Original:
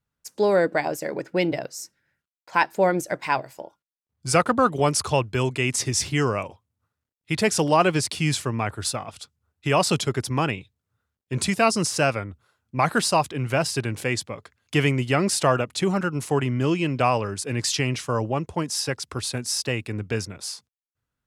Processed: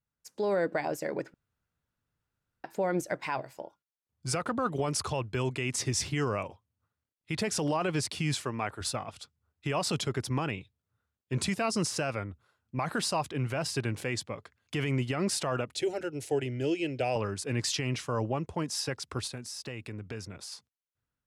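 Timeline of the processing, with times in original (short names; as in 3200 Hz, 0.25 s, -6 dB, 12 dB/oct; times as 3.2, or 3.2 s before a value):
1.34–2.64 room tone
8.34–8.81 low shelf 160 Hz -11.5 dB
15.72–17.16 fixed phaser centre 460 Hz, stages 4
19.27–20.52 compressor 3:1, threshold -33 dBFS
whole clip: high shelf 6000 Hz -5.5 dB; limiter -16 dBFS; AGC gain up to 3.5 dB; gain -7.5 dB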